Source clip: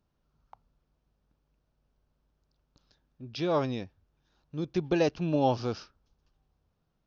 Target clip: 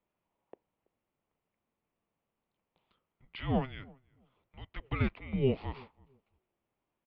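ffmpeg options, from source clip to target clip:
ffmpeg -i in.wav -filter_complex "[0:a]asplit=2[link_01][link_02];[link_02]adelay=330,lowpass=frequency=920:poles=1,volume=-23dB,asplit=2[link_03][link_04];[link_04]adelay=330,lowpass=frequency=920:poles=1,volume=0.24[link_05];[link_03][link_05]amix=inputs=2:normalize=0[link_06];[link_01][link_06]amix=inputs=2:normalize=0,highpass=frequency=500:width_type=q:width=0.5412,highpass=frequency=500:width_type=q:width=1.307,lowpass=frequency=3400:width_type=q:width=0.5176,lowpass=frequency=3400:width_type=q:width=0.7071,lowpass=frequency=3400:width_type=q:width=1.932,afreqshift=-400" out.wav

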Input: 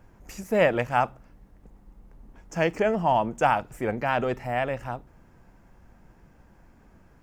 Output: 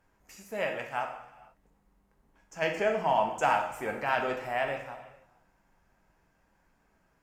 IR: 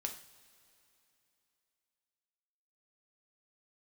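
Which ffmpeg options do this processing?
-filter_complex "[0:a]lowshelf=frequency=480:gain=-11.5,asplit=3[link_01][link_02][link_03];[link_01]afade=type=out:start_time=2.61:duration=0.02[link_04];[link_02]acontrast=62,afade=type=in:start_time=2.61:duration=0.02,afade=type=out:start_time=4.77:duration=0.02[link_05];[link_03]afade=type=in:start_time=4.77:duration=0.02[link_06];[link_04][link_05][link_06]amix=inputs=3:normalize=0[link_07];[1:a]atrim=start_sample=2205,afade=type=out:start_time=0.41:duration=0.01,atrim=end_sample=18522,asetrate=31752,aresample=44100[link_08];[link_07][link_08]afir=irnorm=-1:irlink=0,volume=-7.5dB"

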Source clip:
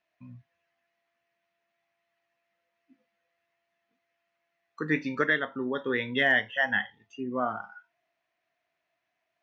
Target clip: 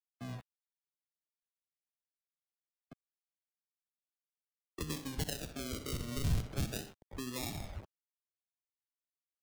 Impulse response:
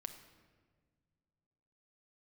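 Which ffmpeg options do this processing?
-filter_complex "[0:a]adynamicequalizer=threshold=0.01:dfrequency=1000:dqfactor=1.1:tfrequency=1000:tqfactor=1.1:attack=5:release=100:ratio=0.375:range=2:mode=boostabove:tftype=bell,acrusher=samples=41:mix=1:aa=0.000001:lfo=1:lforange=24.6:lforate=0.37,aecho=1:1:63|126:0.211|0.038,acompressor=threshold=-41dB:ratio=2,aecho=1:1:111:0.0891,acrusher=bits=8:mix=0:aa=0.000001,afftdn=noise_reduction=12:noise_floor=-65,acrossover=split=170|3000[link_01][link_02][link_03];[link_02]acompressor=threshold=-48dB:ratio=6[link_04];[link_01][link_04][link_03]amix=inputs=3:normalize=0,volume=5dB"

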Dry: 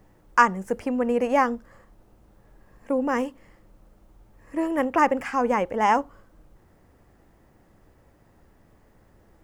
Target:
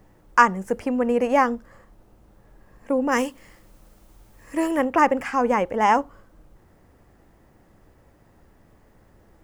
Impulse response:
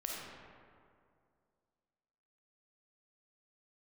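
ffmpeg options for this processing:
-filter_complex "[0:a]asplit=3[link_01][link_02][link_03];[link_01]afade=type=out:start_time=3.11:duration=0.02[link_04];[link_02]highshelf=frequency=2300:gain=11.5,afade=type=in:start_time=3.11:duration=0.02,afade=type=out:start_time=4.76:duration=0.02[link_05];[link_03]afade=type=in:start_time=4.76:duration=0.02[link_06];[link_04][link_05][link_06]amix=inputs=3:normalize=0,volume=2dB"

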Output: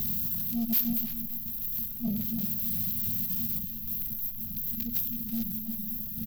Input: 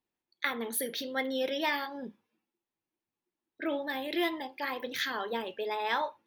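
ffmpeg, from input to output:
ffmpeg -i in.wav -filter_complex "[0:a]aeval=exprs='val(0)+0.5*0.0422*sgn(val(0))':channel_layout=same,afftfilt=real='re*(1-between(b*sr/4096,240,12000))':imag='im*(1-between(b*sr/4096,240,12000))':win_size=4096:overlap=0.75,aeval=exprs='(tanh(31.6*val(0)+0.15)-tanh(0.15))/31.6':channel_layout=same,acrossover=split=2100[link_01][link_02];[link_02]acontrast=61[link_03];[link_01][link_03]amix=inputs=2:normalize=0,equalizer=frequency=4300:width=0.8:gain=8,areverse,acompressor=mode=upward:threshold=-42dB:ratio=2.5,areverse,asplit=2[link_04][link_05];[link_05]adelay=326.5,volume=-7dB,highshelf=frequency=4000:gain=-7.35[link_06];[link_04][link_06]amix=inputs=2:normalize=0,volume=6.5dB" out.wav

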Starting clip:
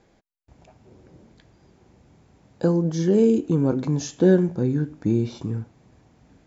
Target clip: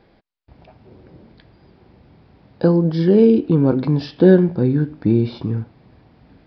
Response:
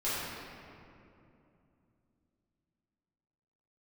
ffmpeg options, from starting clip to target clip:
-af "aresample=11025,aresample=44100,volume=5.5dB"

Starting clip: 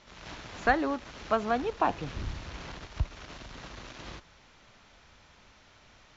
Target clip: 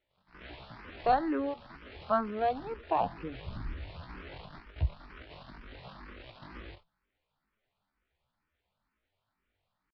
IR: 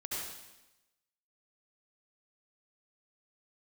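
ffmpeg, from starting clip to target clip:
-filter_complex "[0:a]aemphasis=mode=reproduction:type=50fm,agate=range=-21dB:threshold=-47dB:ratio=16:detection=peak,atempo=0.62,aresample=11025,aresample=44100,asplit=2[link_01][link_02];[link_02]afreqshift=2.1[link_03];[link_01][link_03]amix=inputs=2:normalize=1"

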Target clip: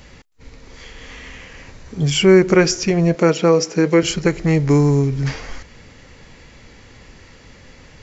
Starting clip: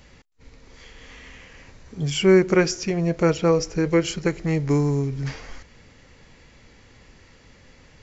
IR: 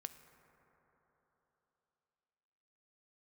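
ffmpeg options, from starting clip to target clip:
-filter_complex "[0:a]asplit=2[link_01][link_02];[link_02]alimiter=limit=-15dB:level=0:latency=1:release=91,volume=-0.5dB[link_03];[link_01][link_03]amix=inputs=2:normalize=0,asettb=1/sr,asplit=3[link_04][link_05][link_06];[link_04]atrim=end=3.154[link_07];[link_05]atrim=start=3.15:end=4.03,asetpts=PTS-STARTPTS,afade=type=in:duration=0.004:curve=qsin,afade=type=out:start_time=0.876:duration=0.004:curve=qsin,highpass=frequency=160:width=0.5412,highpass=frequency=160:width=1.3066[link_08];[link_06]atrim=start=4.026[link_09];[link_07][link_08]acrossfade=duration=0.004:curve1=hsin:curve2=qsin[link_10];[link_10][link_09]acrossfade=duration=0.004:curve1=qsin:curve2=hsin,volume=1.5dB"

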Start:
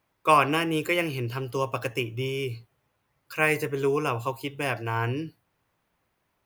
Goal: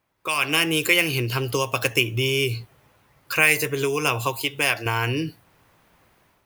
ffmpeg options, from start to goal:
ffmpeg -i in.wav -filter_complex "[0:a]acrossover=split=2400[link_01][link_02];[link_01]acompressor=threshold=-37dB:ratio=6[link_03];[link_03][link_02]amix=inputs=2:normalize=0,asettb=1/sr,asplit=3[link_04][link_05][link_06];[link_04]atrim=end=4.424[link_07];[link_05]atrim=start=4.42:end=4.86,asetpts=PTS-STARTPTS,afade=type=in:duration=0.004:curve=qsin,afade=type=out:start_time=0.436:duration=0.004:curve=qsin,lowshelf=frequency=420:gain=-8.5[link_08];[link_06]atrim=start=4.856[link_09];[link_07][link_08]acrossfade=duration=0.004:curve1=hsin:curve2=qsin[link_10];[link_10][link_09]acrossfade=duration=0.004:curve1=qsin:curve2=hsin,dynaudnorm=framelen=150:gausssize=5:maxgain=15dB" out.wav

